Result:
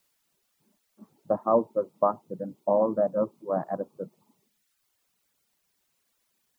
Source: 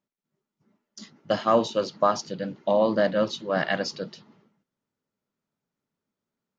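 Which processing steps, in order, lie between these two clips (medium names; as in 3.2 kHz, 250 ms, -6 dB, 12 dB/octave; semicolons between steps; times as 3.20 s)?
Chebyshev shaper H 7 -36 dB, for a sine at -8.5 dBFS; steep low-pass 1.1 kHz 36 dB/octave; bass shelf 120 Hz -9.5 dB; word length cut 12-bit, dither triangular; reverb removal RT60 0.96 s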